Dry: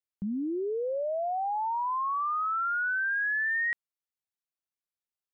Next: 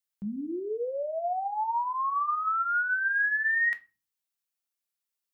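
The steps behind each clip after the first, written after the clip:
spectral tilt +2 dB per octave
on a send at −7.5 dB: convolution reverb RT60 0.30 s, pre-delay 4 ms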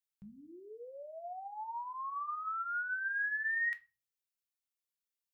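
drawn EQ curve 130 Hz 0 dB, 240 Hz −16 dB, 2,200 Hz −1 dB
level −5.5 dB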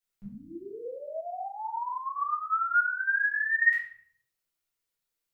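rectangular room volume 94 cubic metres, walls mixed, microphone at 1.8 metres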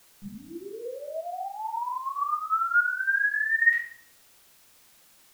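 background noise white −60 dBFS
level +2 dB

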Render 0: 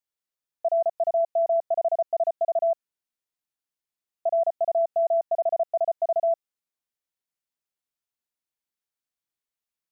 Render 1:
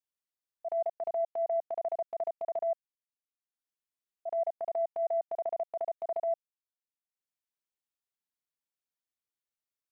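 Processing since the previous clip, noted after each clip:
transient designer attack −8 dB, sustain −12 dB
level −6 dB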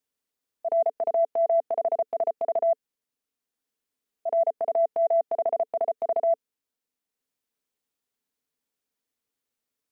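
hollow resonant body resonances 260/440 Hz, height 10 dB
level +7 dB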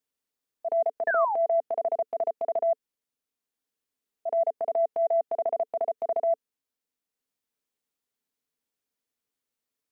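sound drawn into the spectrogram fall, 0:01.07–0:01.36, 750–1,800 Hz −25 dBFS
level −2 dB

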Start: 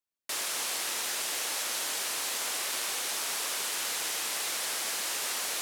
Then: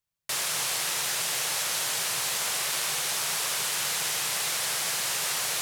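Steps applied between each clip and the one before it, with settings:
low shelf with overshoot 190 Hz +9 dB, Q 3
level +4 dB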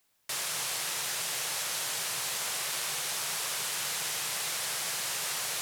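background noise white −68 dBFS
level −4.5 dB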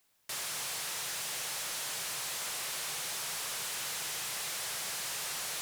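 soft clipping −33.5 dBFS, distortion −11 dB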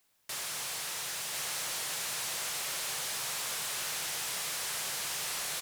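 single-tap delay 1,046 ms −3.5 dB

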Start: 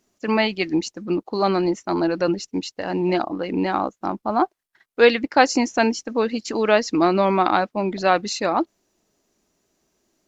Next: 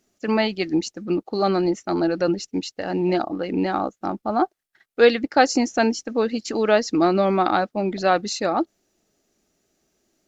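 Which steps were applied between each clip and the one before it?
dynamic equaliser 2,400 Hz, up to −5 dB, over −38 dBFS, Q 1.8
notch filter 1,000 Hz, Q 5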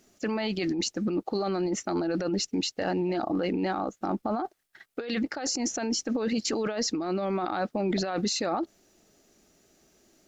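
compressor whose output falls as the input rises −27 dBFS, ratio −1
brickwall limiter −21 dBFS, peak gain reduction 10.5 dB
level +1 dB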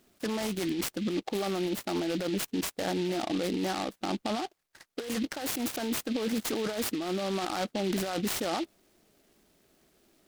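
short delay modulated by noise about 3,000 Hz, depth 0.086 ms
level −2.5 dB

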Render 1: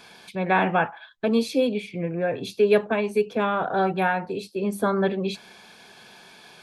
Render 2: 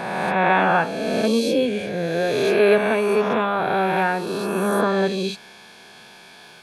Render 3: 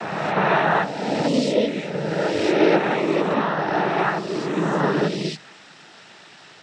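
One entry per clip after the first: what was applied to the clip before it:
peak hold with a rise ahead of every peak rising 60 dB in 2.16 s
cochlear-implant simulation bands 12; MP3 80 kbit/s 32,000 Hz

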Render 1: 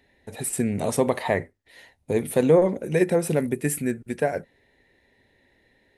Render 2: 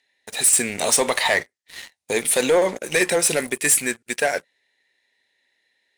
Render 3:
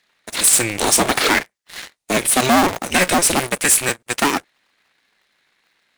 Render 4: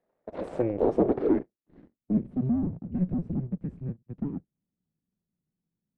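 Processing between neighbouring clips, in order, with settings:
meter weighting curve ITU-R 468; leveller curve on the samples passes 3; level −3.5 dB
sub-harmonics by changed cycles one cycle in 2, inverted; in parallel at −3 dB: hard clipping −18.5 dBFS, distortion −10 dB
low-pass filter sweep 570 Hz → 170 Hz, 0:00.59–0:02.55; level −6 dB

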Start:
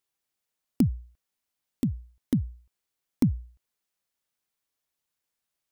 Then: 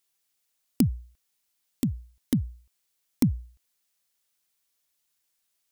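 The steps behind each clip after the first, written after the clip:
high-shelf EQ 2,200 Hz +9.5 dB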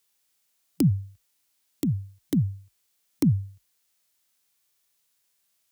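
harmonic and percussive parts rebalanced percussive −9 dB
frequency shifter +38 Hz
level +7.5 dB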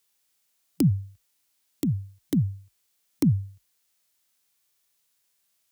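no processing that can be heard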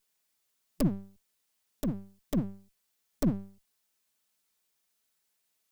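lower of the sound and its delayed copy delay 4.6 ms
level −4 dB

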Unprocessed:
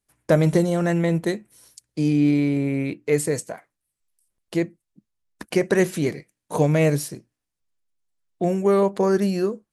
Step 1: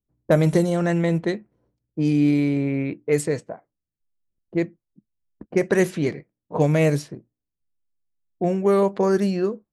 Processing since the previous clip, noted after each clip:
low-pass that shuts in the quiet parts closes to 330 Hz, open at −15 dBFS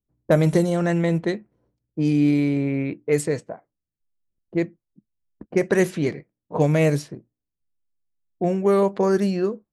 no processing that can be heard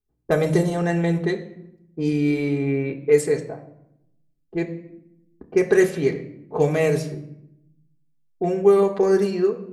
convolution reverb RT60 0.80 s, pre-delay 3 ms, DRR 0.5 dB
level −2 dB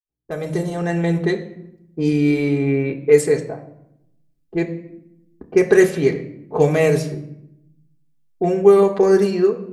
fade in at the beginning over 1.35 s
level +4 dB

